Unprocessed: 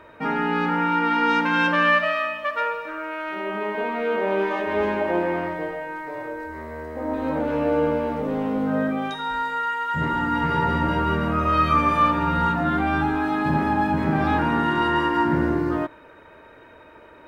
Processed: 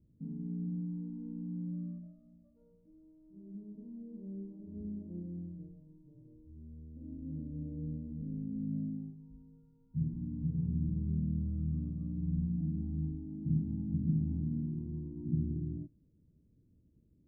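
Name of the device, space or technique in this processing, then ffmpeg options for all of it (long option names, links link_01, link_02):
the neighbour's flat through the wall: -af "lowpass=frequency=210:width=0.5412,lowpass=frequency=210:width=1.3066,equalizer=frequency=160:width_type=o:width=0.78:gain=4,volume=-8dB"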